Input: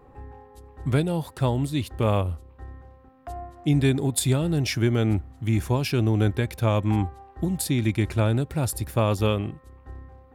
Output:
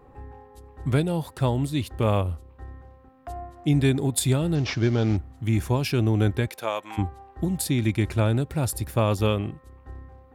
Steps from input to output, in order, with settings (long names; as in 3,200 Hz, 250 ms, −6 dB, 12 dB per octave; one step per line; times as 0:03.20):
0:04.55–0:05.17: variable-slope delta modulation 32 kbit/s
0:06.47–0:06.97: high-pass filter 340 Hz → 1,000 Hz 12 dB per octave